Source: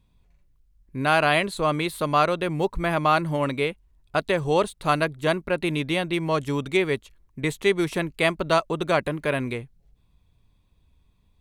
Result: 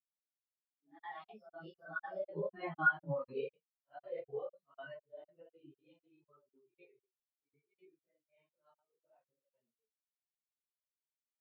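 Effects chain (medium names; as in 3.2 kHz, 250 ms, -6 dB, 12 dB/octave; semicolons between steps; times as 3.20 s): phase randomisation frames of 200 ms; Doppler pass-by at 2.93 s, 27 m/s, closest 9 m; compression 6:1, threshold -30 dBFS, peak gain reduction 15.5 dB; treble shelf 2.3 kHz +6 dB; hum notches 60/120/180/240/300 Hz; formant shift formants +3 st; high-pass 120 Hz 12 dB/octave; treble shelf 8.7 kHz -5 dB; crackling interface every 0.25 s, samples 2048, zero, from 0.49 s; spectral contrast expander 2.5:1; trim +2 dB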